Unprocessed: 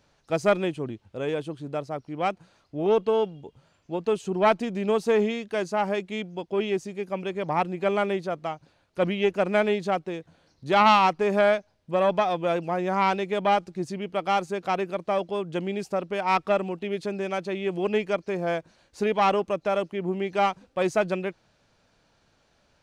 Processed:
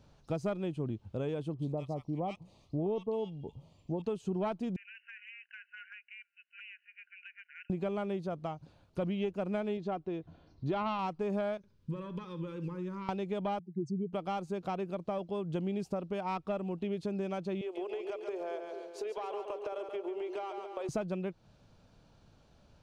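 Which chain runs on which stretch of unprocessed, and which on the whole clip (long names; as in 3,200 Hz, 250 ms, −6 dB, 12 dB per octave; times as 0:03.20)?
0:01.54–0:04.02: Butterworth band-reject 1,500 Hz, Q 2.1 + multiband delay without the direct sound lows, highs 50 ms, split 1,300 Hz
0:04.76–0:07.70: linear-phase brick-wall band-pass 1,400–3,000 Hz + downward compressor 4 to 1, threshold −40 dBFS
0:09.77–0:10.99: high-frequency loss of the air 140 metres + comb filter 2.9 ms, depth 33%
0:11.57–0:13.09: downward compressor 16 to 1, threshold −35 dBFS + Butterworth band-reject 700 Hz, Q 1.5 + flutter between parallel walls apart 11.3 metres, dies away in 0.3 s
0:13.59–0:14.13: expanding power law on the bin magnitudes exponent 2.5 + high-pass filter 150 Hz
0:17.61–0:20.89: elliptic high-pass filter 370 Hz, stop band 60 dB + downward compressor, threshold −31 dBFS + echo with a time of its own for lows and highs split 500 Hz, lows 222 ms, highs 139 ms, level −7 dB
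whole clip: parametric band 1,900 Hz −8 dB 0.79 octaves; downward compressor 3 to 1, threshold −37 dBFS; bass and treble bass +8 dB, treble −5 dB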